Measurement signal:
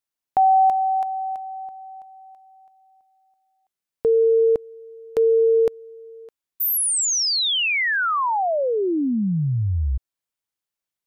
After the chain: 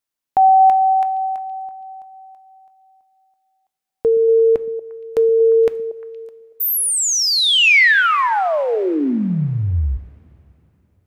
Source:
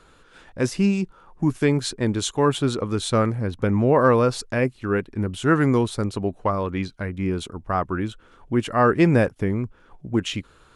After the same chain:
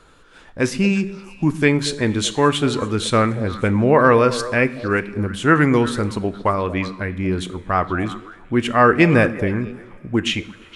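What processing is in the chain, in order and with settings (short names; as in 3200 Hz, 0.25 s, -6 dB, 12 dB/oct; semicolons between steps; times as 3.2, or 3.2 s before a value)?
dynamic EQ 2200 Hz, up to +8 dB, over -40 dBFS, Q 1.1; delay with a stepping band-pass 0.117 s, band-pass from 190 Hz, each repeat 1.4 oct, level -8.5 dB; two-slope reverb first 0.54 s, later 3.6 s, from -19 dB, DRR 13 dB; gain +2.5 dB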